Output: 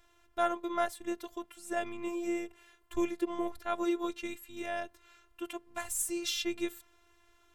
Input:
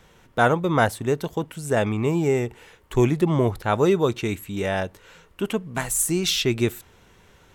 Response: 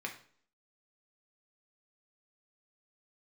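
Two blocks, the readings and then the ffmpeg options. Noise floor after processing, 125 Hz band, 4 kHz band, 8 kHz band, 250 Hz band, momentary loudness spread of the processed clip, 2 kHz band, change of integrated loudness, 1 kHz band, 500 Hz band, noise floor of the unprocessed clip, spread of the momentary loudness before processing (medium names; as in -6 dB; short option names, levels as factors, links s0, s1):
-67 dBFS, -35.5 dB, -11.5 dB, -10.5 dB, -11.5 dB, 11 LU, -13.0 dB, -12.5 dB, -10.0 dB, -13.5 dB, -55 dBFS, 9 LU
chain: -af "equalizer=f=220:w=1.9:g=-11,afftfilt=real='hypot(re,im)*cos(PI*b)':imag='0':win_size=512:overlap=0.75,volume=0.422"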